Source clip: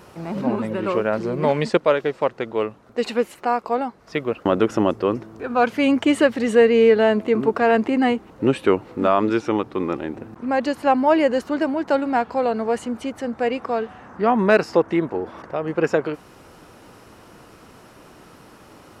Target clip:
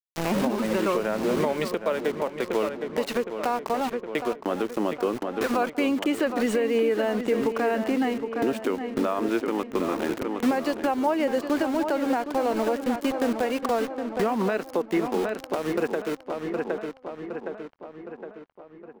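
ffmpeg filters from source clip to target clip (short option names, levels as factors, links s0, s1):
-filter_complex "[0:a]highpass=f=180:w=0.5412,highpass=f=180:w=1.3066,aeval=exprs='val(0)*gte(abs(val(0)),0.0316)':c=same,acompressor=threshold=0.0398:ratio=2.5,asplit=2[s0][s1];[s1]adelay=764,lowpass=f=3400:p=1,volume=0.355,asplit=2[s2][s3];[s3]adelay=764,lowpass=f=3400:p=1,volume=0.54,asplit=2[s4][s5];[s5]adelay=764,lowpass=f=3400:p=1,volume=0.54,asplit=2[s6][s7];[s7]adelay=764,lowpass=f=3400:p=1,volume=0.54,asplit=2[s8][s9];[s9]adelay=764,lowpass=f=3400:p=1,volume=0.54,asplit=2[s10][s11];[s11]adelay=764,lowpass=f=3400:p=1,volume=0.54[s12];[s2][s4][s6][s8][s10][s12]amix=inputs=6:normalize=0[s13];[s0][s13]amix=inputs=2:normalize=0,alimiter=limit=0.0708:level=0:latency=1:release=428,volume=2.51"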